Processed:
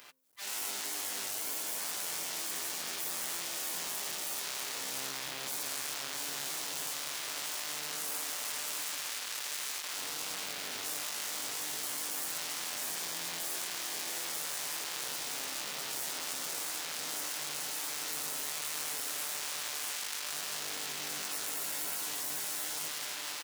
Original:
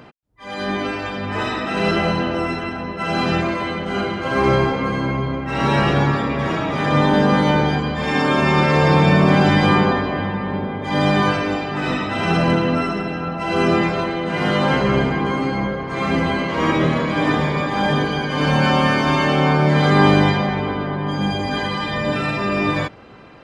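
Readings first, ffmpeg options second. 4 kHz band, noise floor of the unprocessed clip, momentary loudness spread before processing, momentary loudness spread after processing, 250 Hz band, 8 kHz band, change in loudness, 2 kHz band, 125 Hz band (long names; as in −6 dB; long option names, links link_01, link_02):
−9.5 dB, −29 dBFS, 9 LU, 2 LU, −35.5 dB, +9.5 dB, −16.0 dB, −19.0 dB, below −40 dB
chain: -filter_complex "[0:a]aeval=exprs='0.841*(cos(1*acos(clip(val(0)/0.841,-1,1)))-cos(1*PI/2))+0.422*(cos(4*acos(clip(val(0)/0.841,-1,1)))-cos(4*PI/2))':channel_layout=same,asplit=2[link_01][link_02];[link_02]acrusher=bits=2:mode=log:mix=0:aa=0.000001,volume=-10dB[link_03];[link_01][link_03]amix=inputs=2:normalize=0,acompressor=threshold=-16dB:ratio=6,aeval=exprs='(tanh(25.1*val(0)+0.45)-tanh(0.45))/25.1':channel_layout=same,equalizer=frequency=71:width=2.7:gain=-9.5,aecho=1:1:6.8:0.45,bandreject=frequency=87.5:width_type=h:width=4,bandreject=frequency=175:width_type=h:width=4,bandreject=frequency=262.5:width_type=h:width=4,aeval=exprs='max(val(0),0)':channel_layout=same,aderivative,asplit=2[link_04][link_05];[link_05]aecho=0:1:672:0.531[link_06];[link_04][link_06]amix=inputs=2:normalize=0,afftfilt=real='re*lt(hypot(re,im),0.00355)':imag='im*lt(hypot(re,im),0.00355)':win_size=1024:overlap=0.75,dynaudnorm=framelen=100:gausssize=3:maxgain=10dB,volume=7.5dB"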